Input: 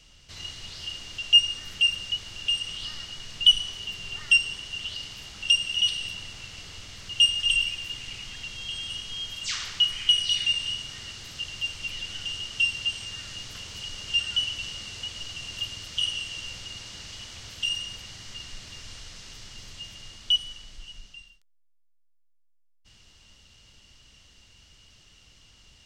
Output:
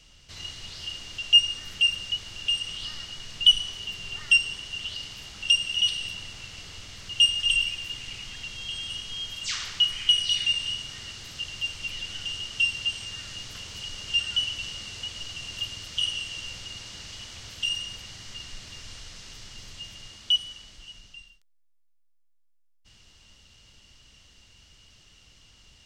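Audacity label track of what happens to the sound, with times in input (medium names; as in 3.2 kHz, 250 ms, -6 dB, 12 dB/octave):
20.070000	21.050000	high-pass 64 Hz 6 dB/octave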